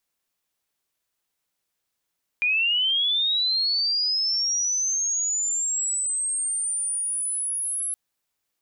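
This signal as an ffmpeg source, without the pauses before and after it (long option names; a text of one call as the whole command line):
ffmpeg -f lavfi -i "aevalsrc='pow(10,(-19-6*t/5.52)/20)*sin(2*PI*(2400*t+8600*t*t/(2*5.52)))':duration=5.52:sample_rate=44100" out.wav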